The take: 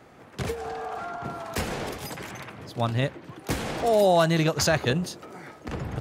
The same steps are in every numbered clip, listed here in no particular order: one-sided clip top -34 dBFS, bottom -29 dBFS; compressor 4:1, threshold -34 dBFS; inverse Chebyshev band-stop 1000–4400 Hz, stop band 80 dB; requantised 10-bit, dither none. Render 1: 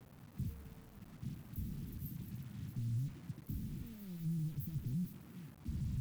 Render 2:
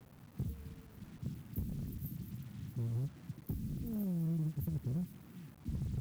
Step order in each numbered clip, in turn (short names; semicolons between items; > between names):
one-sided clip > compressor > inverse Chebyshev band-stop > requantised; inverse Chebyshev band-stop > compressor > one-sided clip > requantised